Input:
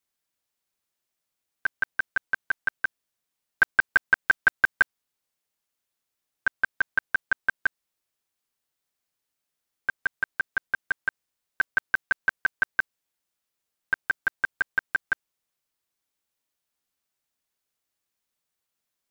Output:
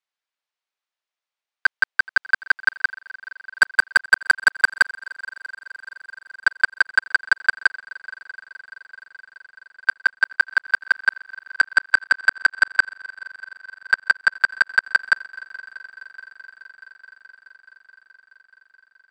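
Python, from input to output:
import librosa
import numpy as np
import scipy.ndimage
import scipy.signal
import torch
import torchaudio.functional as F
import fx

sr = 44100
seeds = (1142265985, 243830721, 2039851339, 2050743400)

y = fx.bandpass_edges(x, sr, low_hz=680.0, high_hz=4200.0)
y = fx.leveller(y, sr, passes=2)
y = fx.echo_heads(y, sr, ms=213, heads='second and third', feedback_pct=71, wet_db=-23.0)
y = y * 10.0 ** (4.0 / 20.0)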